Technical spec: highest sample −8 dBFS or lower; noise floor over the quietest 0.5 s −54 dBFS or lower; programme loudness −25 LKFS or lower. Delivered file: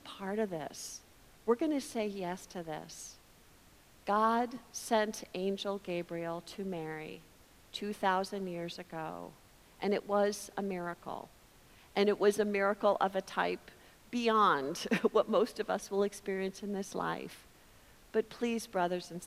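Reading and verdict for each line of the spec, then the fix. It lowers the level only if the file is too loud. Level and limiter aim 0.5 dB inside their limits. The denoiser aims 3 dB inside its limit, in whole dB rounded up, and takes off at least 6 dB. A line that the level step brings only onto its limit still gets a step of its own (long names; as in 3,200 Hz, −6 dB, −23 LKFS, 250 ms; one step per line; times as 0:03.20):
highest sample −14.5 dBFS: in spec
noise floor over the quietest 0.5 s −61 dBFS: in spec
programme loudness −34.5 LKFS: in spec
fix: no processing needed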